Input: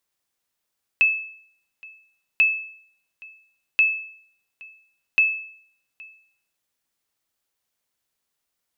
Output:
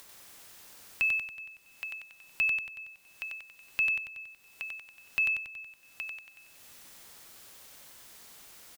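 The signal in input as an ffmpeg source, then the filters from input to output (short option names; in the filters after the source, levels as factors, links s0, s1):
-f lavfi -i "aevalsrc='0.299*(sin(2*PI*2610*mod(t,1.39))*exp(-6.91*mod(t,1.39)/0.61)+0.0562*sin(2*PI*2610*max(mod(t,1.39)-0.82,0))*exp(-6.91*max(mod(t,1.39)-0.82,0)/0.61))':d=5.56:s=44100"
-filter_complex "[0:a]acrossover=split=290[s0][s1];[s1]alimiter=limit=0.0944:level=0:latency=1:release=287[s2];[s0][s2]amix=inputs=2:normalize=0,acompressor=mode=upward:threshold=0.0224:ratio=2.5,aecho=1:1:93|186|279|372|465|558|651|744:0.631|0.366|0.212|0.123|0.0714|0.0414|0.024|0.0139"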